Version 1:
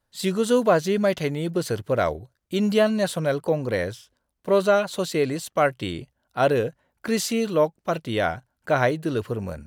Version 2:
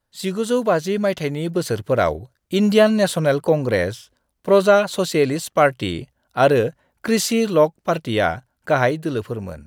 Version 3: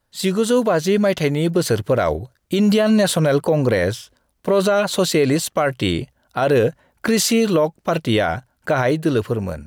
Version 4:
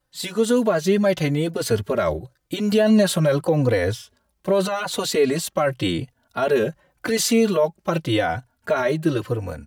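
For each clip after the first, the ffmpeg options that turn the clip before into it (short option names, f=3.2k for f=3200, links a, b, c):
-af "dynaudnorm=f=580:g=5:m=8dB"
-af "alimiter=level_in=13dB:limit=-1dB:release=50:level=0:latency=1,volume=-7.5dB"
-filter_complex "[0:a]asplit=2[a][b];[b]adelay=3.4,afreqshift=-0.87[c];[a][c]amix=inputs=2:normalize=1"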